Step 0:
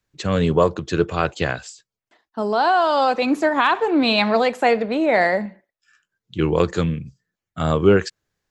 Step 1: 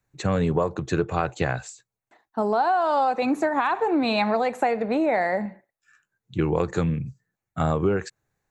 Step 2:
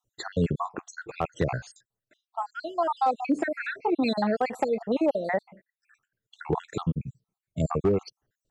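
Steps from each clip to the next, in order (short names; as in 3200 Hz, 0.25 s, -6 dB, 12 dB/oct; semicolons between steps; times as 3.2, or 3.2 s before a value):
thirty-one-band EQ 125 Hz +7 dB, 800 Hz +6 dB, 3150 Hz -10 dB, 5000 Hz -10 dB; compressor, threshold -19 dBFS, peak gain reduction 10.5 dB
random spectral dropouts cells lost 65%; hard clip -15.5 dBFS, distortion -25 dB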